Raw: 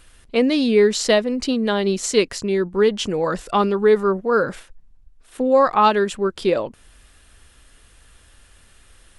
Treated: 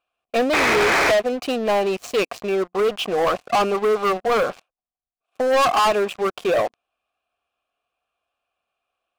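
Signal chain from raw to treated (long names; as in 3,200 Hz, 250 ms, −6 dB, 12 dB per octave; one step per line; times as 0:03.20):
formant filter a
sound drawn into the spectrogram noise, 0:00.53–0:01.12, 280–2,600 Hz −30 dBFS
leveller curve on the samples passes 5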